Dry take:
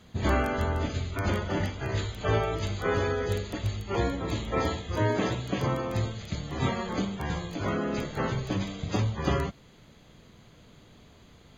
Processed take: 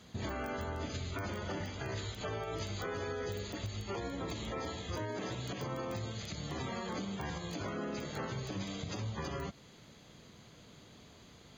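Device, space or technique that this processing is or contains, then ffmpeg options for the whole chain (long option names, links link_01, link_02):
broadcast voice chain: -af "highpass=frequency=93:poles=1,deesser=0.8,acompressor=threshold=-32dB:ratio=4,equalizer=frequency=5500:width_type=o:width=0.78:gain=6,alimiter=level_in=4dB:limit=-24dB:level=0:latency=1:release=105,volume=-4dB,volume=-1.5dB"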